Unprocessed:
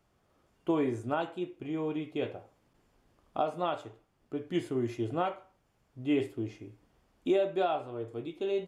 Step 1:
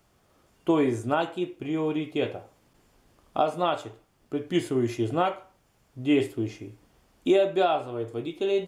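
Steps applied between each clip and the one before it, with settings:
high-shelf EQ 3,900 Hz +6.5 dB
level +6 dB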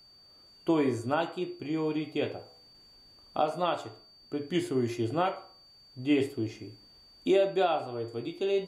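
hum removal 70.39 Hz, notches 20
steady tone 4,600 Hz −52 dBFS
level −3 dB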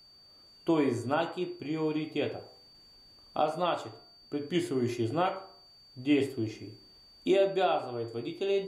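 hum removal 64.03 Hz, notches 31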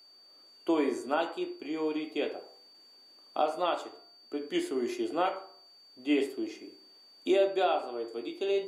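high-pass filter 270 Hz 24 dB per octave

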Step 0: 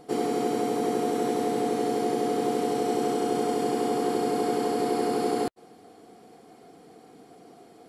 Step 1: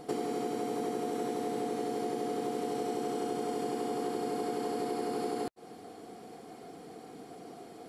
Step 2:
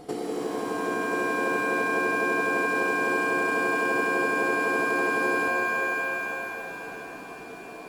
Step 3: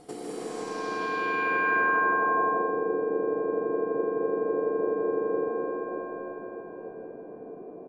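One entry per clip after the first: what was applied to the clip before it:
downward compressor 5 to 1, threshold −35 dBFS, peak gain reduction 12 dB; level +3 dB
mains hum 60 Hz, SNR 33 dB; reverb with rising layers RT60 4 s, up +7 semitones, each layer −2 dB, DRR 2.5 dB; level +1.5 dB
single-tap delay 207 ms −6 dB; low-pass filter sweep 9,400 Hz → 500 Hz, 0:00.34–0:02.77; convolution reverb RT60 1.2 s, pre-delay 141 ms, DRR 2 dB; level −7 dB

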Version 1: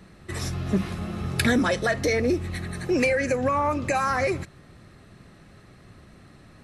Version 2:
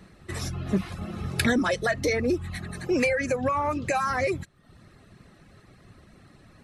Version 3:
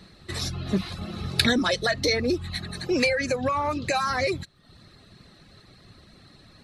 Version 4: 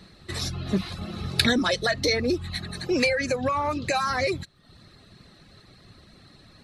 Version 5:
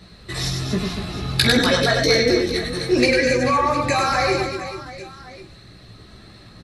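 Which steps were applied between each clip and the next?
reverb reduction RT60 0.66 s; level −1 dB
parametric band 4,100 Hz +13 dB 0.61 octaves
no processing that can be heard
multi-voice chorus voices 4, 0.59 Hz, delay 17 ms, depth 1.5 ms; double-tracking delay 45 ms −11.5 dB; reverse bouncing-ball delay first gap 100 ms, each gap 1.4×, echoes 5; level +7 dB

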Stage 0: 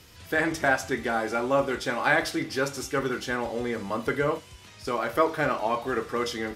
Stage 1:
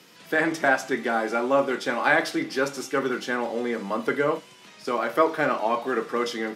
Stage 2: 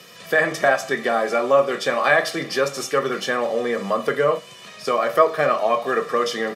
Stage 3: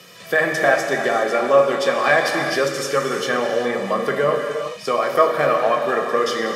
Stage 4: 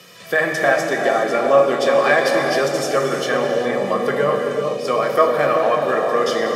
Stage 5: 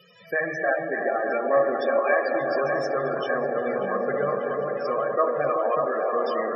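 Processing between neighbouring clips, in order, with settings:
Butterworth high-pass 160 Hz 36 dB per octave; high-shelf EQ 5,200 Hz −5.5 dB; level +2.5 dB
comb filter 1.7 ms, depth 64%; in parallel at +1 dB: downward compressor, threshold −28 dBFS, peak gain reduction 16 dB
reverb whose tail is shaped and stops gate 430 ms flat, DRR 3 dB
bucket-brigade delay 384 ms, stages 2,048, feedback 62%, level −4 dB
spectral peaks only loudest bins 32; delay with a band-pass on its return 591 ms, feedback 67%, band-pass 990 Hz, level −5 dB; level −7.5 dB

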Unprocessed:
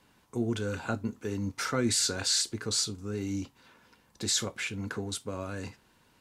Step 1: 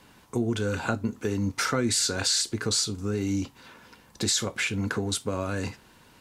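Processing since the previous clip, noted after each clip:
downward compressor 2.5 to 1, threshold −34 dBFS, peak gain reduction 8 dB
level +9 dB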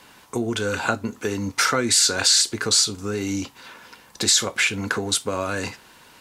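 low-shelf EQ 340 Hz −11 dB
level +8 dB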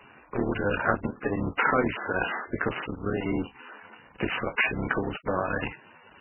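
sub-harmonics by changed cycles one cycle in 3, muted
MP3 8 kbit/s 12,000 Hz

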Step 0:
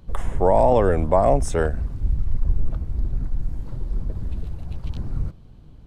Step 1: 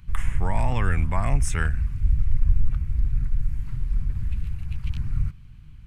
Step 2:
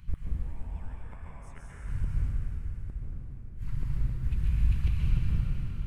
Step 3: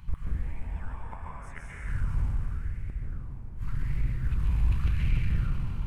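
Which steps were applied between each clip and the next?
drawn EQ curve 130 Hz 0 dB, 560 Hz −23 dB, 1,200 Hz −3 dB, 2,400 Hz +7 dB, 3,700 Hz −4 dB, 9,700 Hz +1 dB; level +1.5 dB
gate with flip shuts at −15 dBFS, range −28 dB; dense smooth reverb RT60 4 s, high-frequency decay 0.85×, pre-delay 115 ms, DRR −5.5 dB; level −3 dB
in parallel at −3.5 dB: hard clipping −27.5 dBFS, distortion −7 dB; on the sum: auto-filter bell 0.87 Hz 890–2,200 Hz +11 dB; level −2 dB

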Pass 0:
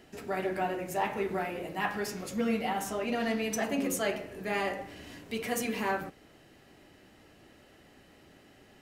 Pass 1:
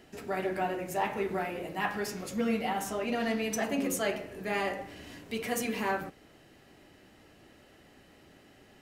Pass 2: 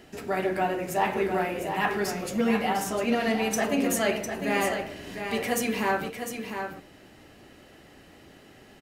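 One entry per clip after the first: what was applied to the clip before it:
no processing that can be heard
single-tap delay 703 ms −7.5 dB; level +5 dB

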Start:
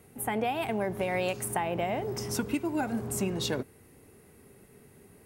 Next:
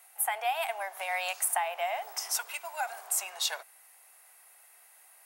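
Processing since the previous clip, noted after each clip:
elliptic high-pass filter 690 Hz, stop band 60 dB
high-shelf EQ 5,500 Hz +7.5 dB
level +1.5 dB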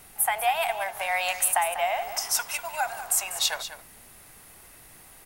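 background noise pink −61 dBFS
single-tap delay 195 ms −11.5 dB
level +5.5 dB

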